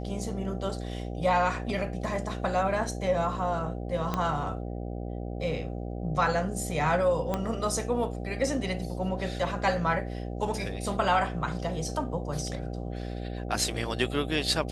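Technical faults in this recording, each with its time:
buzz 60 Hz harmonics 13 -35 dBFS
4.14 pop -15 dBFS
7.34 pop -15 dBFS

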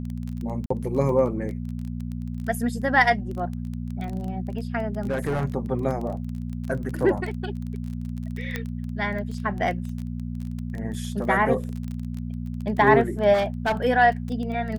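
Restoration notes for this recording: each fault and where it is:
crackle 19/s -30 dBFS
hum 60 Hz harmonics 4 -31 dBFS
0.66–0.7 gap 44 ms
5.05–5.45 clipped -21 dBFS
8.56 pop -14 dBFS
13.33–13.77 clipped -19 dBFS

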